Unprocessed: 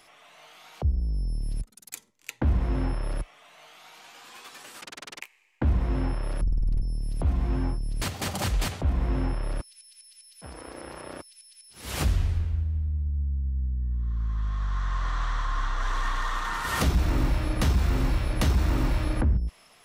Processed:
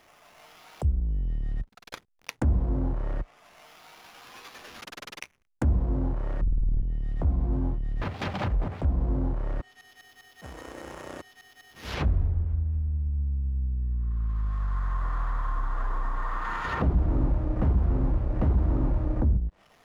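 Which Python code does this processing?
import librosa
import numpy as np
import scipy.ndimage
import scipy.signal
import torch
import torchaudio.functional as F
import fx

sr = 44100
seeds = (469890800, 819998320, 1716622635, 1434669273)

y = fx.sample_hold(x, sr, seeds[0], rate_hz=8300.0, jitter_pct=0)
y = fx.env_lowpass_down(y, sr, base_hz=820.0, full_db=-22.0)
y = fx.backlash(y, sr, play_db=-52.5)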